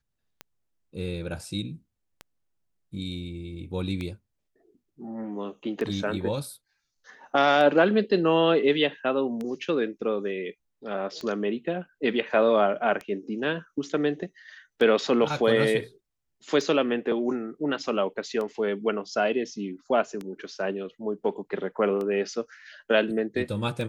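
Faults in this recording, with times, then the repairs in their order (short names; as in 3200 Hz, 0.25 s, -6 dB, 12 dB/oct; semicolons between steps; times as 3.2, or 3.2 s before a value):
tick 33 1/3 rpm -21 dBFS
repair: de-click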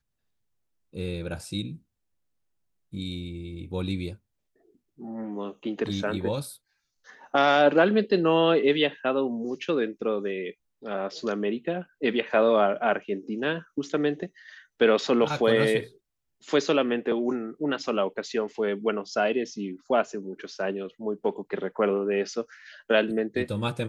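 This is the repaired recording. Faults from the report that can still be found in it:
none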